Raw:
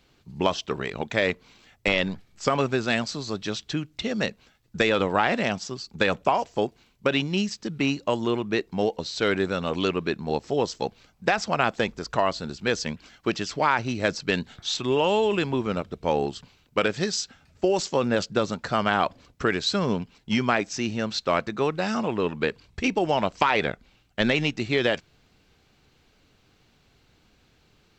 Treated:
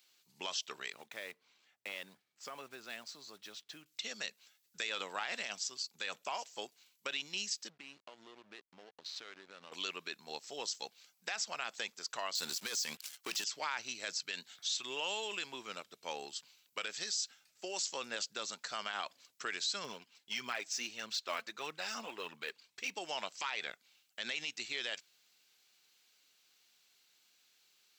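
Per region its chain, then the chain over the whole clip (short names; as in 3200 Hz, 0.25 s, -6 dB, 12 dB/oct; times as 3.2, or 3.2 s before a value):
0.92–3.86 block floating point 5-bit + LPF 1100 Hz 6 dB/oct + compressor 1.5:1, threshold -32 dBFS
7.69–9.72 compressor 8:1, threshold -29 dBFS + backlash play -33.5 dBFS + air absorption 150 m
12.35–13.44 high shelf 6300 Hz +6 dB + sample leveller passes 3
19.84–22.94 high shelf 5500 Hz -7.5 dB + phaser 1.6 Hz, delay 4.7 ms, feedback 43%
whole clip: HPF 120 Hz; differentiator; limiter -28 dBFS; gain +2 dB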